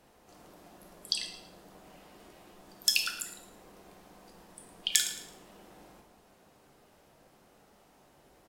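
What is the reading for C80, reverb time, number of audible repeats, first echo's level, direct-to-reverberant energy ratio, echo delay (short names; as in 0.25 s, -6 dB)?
9.5 dB, 0.75 s, 1, -15.0 dB, 4.0 dB, 0.11 s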